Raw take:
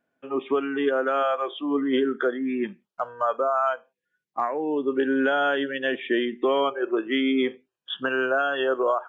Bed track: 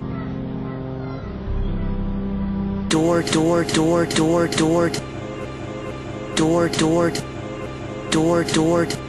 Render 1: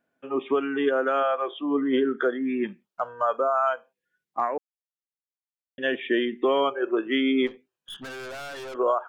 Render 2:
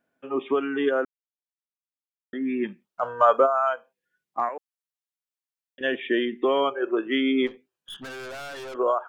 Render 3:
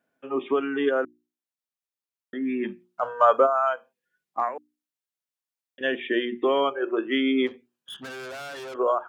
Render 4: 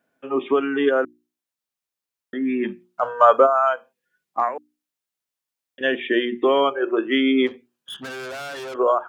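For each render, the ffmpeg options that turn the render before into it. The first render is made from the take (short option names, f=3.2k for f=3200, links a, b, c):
-filter_complex "[0:a]asettb=1/sr,asplit=3[a][b][c];[a]atrim=end=1.204[d];[b]atrim=start=1.2:end=2.18,asetpts=PTS-STARTPTS,afade=t=in:d=0.004:c=qsin,afade=t=out:st=0.976:d=0.004:c=qsin,lowpass=f=3.2k:p=1[e];[c]atrim=start=2.176[f];[d][e]acrossfade=d=0.004:c1=hsin:c2=qsin[g];[g][f]acrossfade=d=0.004:c1=qsin:c2=hsin,asplit=3[h][i][j];[h]afade=t=out:st=7.46:d=0.02[k];[i]aeval=exprs='(tanh(63.1*val(0)+0.2)-tanh(0.2))/63.1':c=same,afade=t=in:st=7.46:d=0.02,afade=t=out:st=8.74:d=0.02[l];[j]afade=t=in:st=8.74:d=0.02[m];[k][l][m]amix=inputs=3:normalize=0,asplit=3[n][o][p];[n]atrim=end=4.58,asetpts=PTS-STARTPTS,afade=t=out:st=4.576:d=0.004:c=hsin[q];[o]atrim=start=4.58:end=5.78,asetpts=PTS-STARTPTS,volume=0[r];[p]atrim=start=5.78,asetpts=PTS-STARTPTS,afade=t=in:d=0.004:c=hsin[s];[q][r][s]concat=n=3:v=0:a=1"
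-filter_complex "[0:a]asplit=3[a][b][c];[a]afade=t=out:st=3.02:d=0.02[d];[b]acontrast=86,afade=t=in:st=3.02:d=0.02,afade=t=out:st=3.45:d=0.02[e];[c]afade=t=in:st=3.45:d=0.02[f];[d][e][f]amix=inputs=3:normalize=0,asettb=1/sr,asplit=3[g][h][i];[g]atrim=end=4.494[j];[h]atrim=start=4.49:end=5.81,asetpts=PTS-STARTPTS,afade=t=in:d=0.004:c=qsin,afade=t=out:st=1.316:d=0.004:c=qsin,highpass=f=1k:p=1[k];[i]atrim=start=5.806[l];[j][k]acrossfade=d=0.004:c1=hsin:c2=qsin[m];[m][l]acrossfade=d=0.004:c1=qsin:c2=hsin,asplit=3[n][o][p];[n]atrim=end=1.05,asetpts=PTS-STARTPTS,afade=t=out:st=1.046:d=0.004:c=hsin[q];[o]atrim=start=1.05:end=2.33,asetpts=PTS-STARTPTS,volume=0[r];[p]atrim=start=2.33,asetpts=PTS-STARTPTS,afade=t=in:d=0.004:c=hsin[s];[q][r][s]concat=n=3:v=0:a=1"
-af "highpass=77,bandreject=f=60:t=h:w=6,bandreject=f=120:t=h:w=6,bandreject=f=180:t=h:w=6,bandreject=f=240:t=h:w=6,bandreject=f=300:t=h:w=6,bandreject=f=360:t=h:w=6"
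-af "volume=4.5dB"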